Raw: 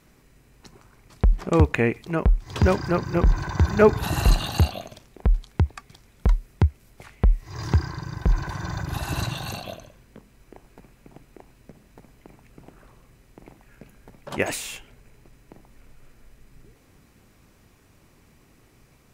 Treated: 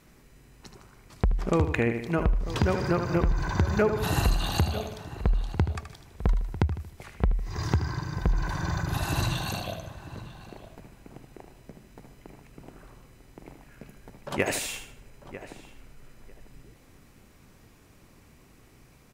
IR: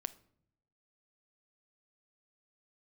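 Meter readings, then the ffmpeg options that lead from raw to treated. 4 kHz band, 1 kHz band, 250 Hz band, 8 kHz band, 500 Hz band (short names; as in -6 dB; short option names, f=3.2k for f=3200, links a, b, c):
-1.0 dB, -2.5 dB, -3.0 dB, -0.5 dB, -5.0 dB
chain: -filter_complex "[0:a]asplit=2[a][b];[b]aecho=0:1:77|154|231|308:0.355|0.124|0.0435|0.0152[c];[a][c]amix=inputs=2:normalize=0,acompressor=threshold=-20dB:ratio=6,asplit=2[d][e];[e]adelay=947,lowpass=f=2.2k:p=1,volume=-14dB,asplit=2[f][g];[g]adelay=947,lowpass=f=2.2k:p=1,volume=0.17[h];[f][h]amix=inputs=2:normalize=0[i];[d][i]amix=inputs=2:normalize=0"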